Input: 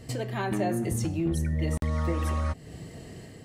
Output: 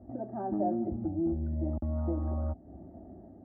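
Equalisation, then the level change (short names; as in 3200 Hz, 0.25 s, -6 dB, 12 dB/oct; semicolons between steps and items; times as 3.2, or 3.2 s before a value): HPF 45 Hz 24 dB/oct; steep low-pass 1000 Hz 36 dB/oct; fixed phaser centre 690 Hz, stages 8; 0.0 dB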